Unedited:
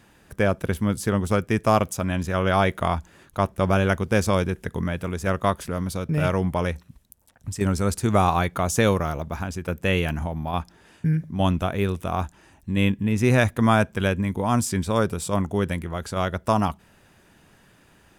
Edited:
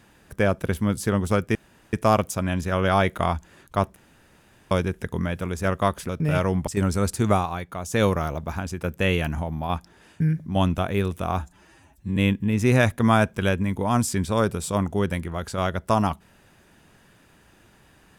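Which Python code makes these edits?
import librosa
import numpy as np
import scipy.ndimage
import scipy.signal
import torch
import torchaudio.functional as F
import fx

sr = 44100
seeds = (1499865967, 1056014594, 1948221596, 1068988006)

y = fx.edit(x, sr, fx.insert_room_tone(at_s=1.55, length_s=0.38),
    fx.room_tone_fill(start_s=3.58, length_s=0.75),
    fx.cut(start_s=5.71, length_s=0.27),
    fx.cut(start_s=6.56, length_s=0.95),
    fx.fade_down_up(start_s=8.15, length_s=0.73, db=-8.5, fade_s=0.15),
    fx.stretch_span(start_s=12.24, length_s=0.51, factor=1.5), tone=tone)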